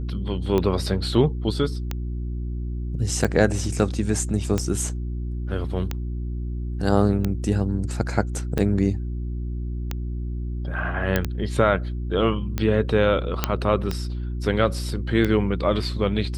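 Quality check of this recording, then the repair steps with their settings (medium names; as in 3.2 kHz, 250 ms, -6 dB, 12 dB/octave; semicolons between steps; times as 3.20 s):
hum 60 Hz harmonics 6 -28 dBFS
tick 45 rpm -11 dBFS
11.16 s: pop -7 dBFS
13.44 s: pop -4 dBFS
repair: de-click; de-hum 60 Hz, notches 6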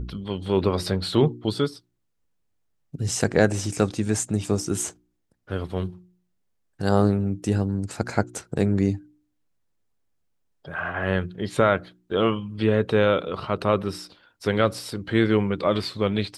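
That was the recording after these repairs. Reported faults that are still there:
nothing left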